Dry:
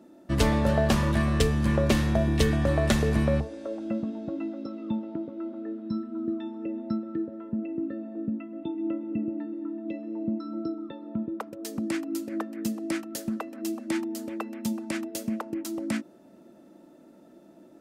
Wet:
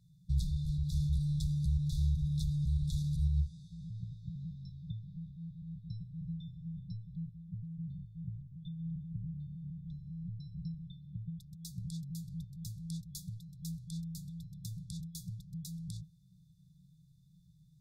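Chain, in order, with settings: octave divider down 1 oct, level -4 dB; peak limiter -20 dBFS, peak gain reduction 10.5 dB; treble shelf 2.8 kHz -10 dB; FFT band-reject 190–3400 Hz; peaking EQ 100 Hz -12 dB 0.38 oct

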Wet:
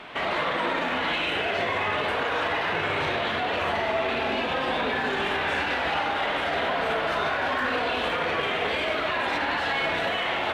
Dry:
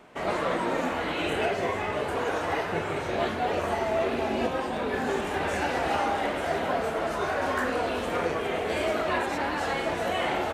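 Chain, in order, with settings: FFT filter 400 Hz 0 dB, 3.5 kHz +13 dB, 6.8 kHz -5 dB; peak limiter -24.5 dBFS, peak gain reduction 15.5 dB; in parallel at -10 dB: one-sided clip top -35 dBFS, bottom -27.5 dBFS; on the sum: reverberation RT60 0.90 s, pre-delay 58 ms, DRR 4.5 dB; trim +3 dB

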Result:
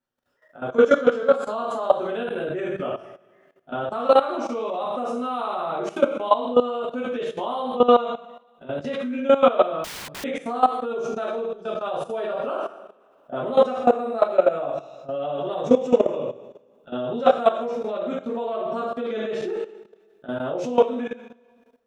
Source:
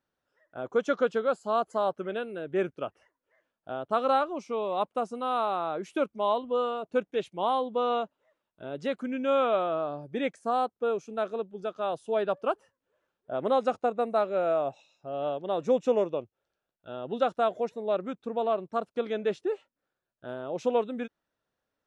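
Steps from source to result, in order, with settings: two-slope reverb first 0.63 s, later 1.7 s, from -18 dB, DRR -8 dB; level held to a coarse grid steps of 15 dB; 9.84–10.24 s: integer overflow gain 34 dB; trim +3 dB

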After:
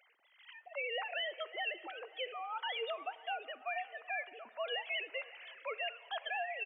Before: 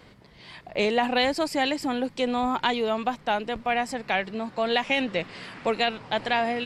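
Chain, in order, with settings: formants replaced by sine waves; differentiator; peak limiter -34.5 dBFS, peak gain reduction 7 dB; feedback delay 548 ms, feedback 54%, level -21 dB; on a send at -17 dB: reverberation RT60 2.1 s, pre-delay 3 ms; on the sum: trim +5 dB

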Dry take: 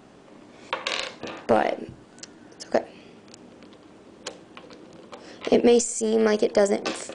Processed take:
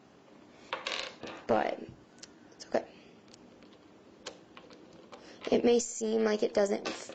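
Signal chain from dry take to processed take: trim -8 dB; Vorbis 32 kbps 16 kHz

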